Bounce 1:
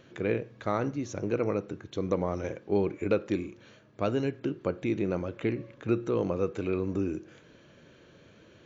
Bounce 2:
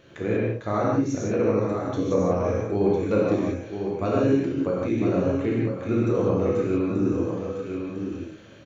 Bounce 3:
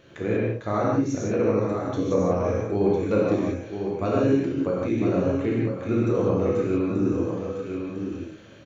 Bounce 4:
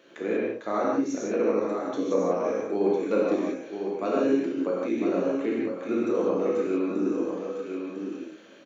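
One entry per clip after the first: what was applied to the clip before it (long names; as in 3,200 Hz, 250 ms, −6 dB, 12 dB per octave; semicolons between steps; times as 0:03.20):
single-tap delay 1,004 ms −7 dB; reverb whose tail is shaped and stops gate 210 ms flat, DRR −5.5 dB; dynamic equaliser 2,800 Hz, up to −7 dB, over −48 dBFS, Q 1.3
no processing that can be heard
high-pass filter 230 Hz 24 dB per octave; level −1.5 dB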